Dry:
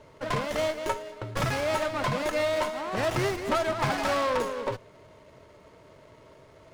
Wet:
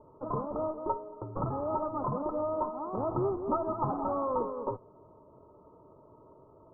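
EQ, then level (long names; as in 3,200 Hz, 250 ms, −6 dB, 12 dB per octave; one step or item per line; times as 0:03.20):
Chebyshev low-pass with heavy ripple 1,300 Hz, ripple 6 dB
0.0 dB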